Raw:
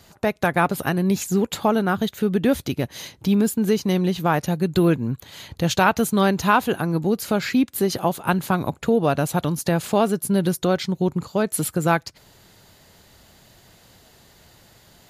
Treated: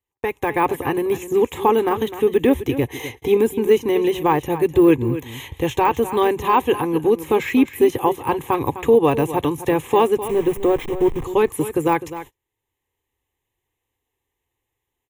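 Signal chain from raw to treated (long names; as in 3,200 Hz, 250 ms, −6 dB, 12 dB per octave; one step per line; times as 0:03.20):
0:10.17–0:11.24: hold until the input has moved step −28.5 dBFS
automatic gain control gain up to 8 dB
phaser with its sweep stopped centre 950 Hz, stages 8
de-essing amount 75%
0:02.87–0:03.37: hollow resonant body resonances 440/750/2,100 Hz, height 10 dB, ringing for 45 ms
single-tap delay 255 ms −13 dB
noise gate −39 dBFS, range −35 dB
level +3 dB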